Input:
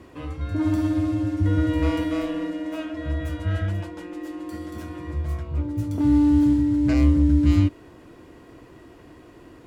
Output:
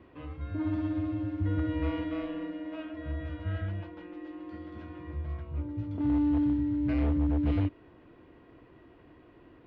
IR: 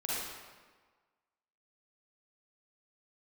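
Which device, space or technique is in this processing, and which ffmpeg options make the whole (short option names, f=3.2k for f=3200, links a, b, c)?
synthesiser wavefolder: -af "aeval=exprs='0.251*(abs(mod(val(0)/0.251+3,4)-2)-1)':c=same,lowpass=f=3.4k:w=0.5412,lowpass=f=3.4k:w=1.3066,volume=-8.5dB"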